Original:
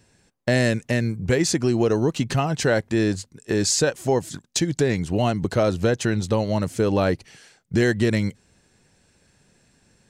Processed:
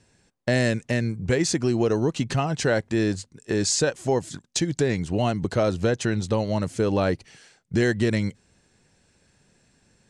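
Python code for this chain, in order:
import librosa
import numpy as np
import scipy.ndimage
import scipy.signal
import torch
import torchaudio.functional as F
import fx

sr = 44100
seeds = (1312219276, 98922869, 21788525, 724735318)

y = scipy.signal.sosfilt(scipy.signal.butter(4, 10000.0, 'lowpass', fs=sr, output='sos'), x)
y = y * 10.0 ** (-2.0 / 20.0)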